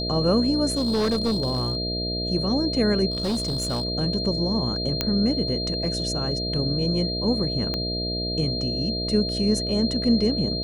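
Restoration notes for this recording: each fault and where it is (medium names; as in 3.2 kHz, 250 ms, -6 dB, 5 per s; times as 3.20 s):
buzz 60 Hz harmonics 11 -30 dBFS
whine 4.2 kHz -28 dBFS
0.70–1.77 s: clipped -19 dBFS
3.10–3.85 s: clipped -21.5 dBFS
5.01 s: pop -7 dBFS
7.74 s: pop -14 dBFS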